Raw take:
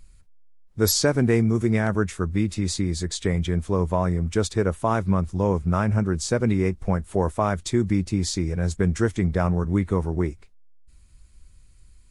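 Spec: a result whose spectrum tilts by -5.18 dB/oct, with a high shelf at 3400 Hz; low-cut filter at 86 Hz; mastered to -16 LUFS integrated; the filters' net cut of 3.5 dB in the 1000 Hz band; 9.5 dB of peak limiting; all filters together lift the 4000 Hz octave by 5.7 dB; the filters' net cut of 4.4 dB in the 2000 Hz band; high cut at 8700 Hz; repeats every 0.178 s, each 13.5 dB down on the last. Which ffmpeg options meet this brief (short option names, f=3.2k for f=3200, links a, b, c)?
-af "highpass=86,lowpass=8.7k,equalizer=f=1k:t=o:g=-3.5,equalizer=f=2k:t=o:g=-7,highshelf=f=3.4k:g=6.5,equalizer=f=4k:t=o:g=3.5,alimiter=limit=-14.5dB:level=0:latency=1,aecho=1:1:178|356:0.211|0.0444,volume=9.5dB"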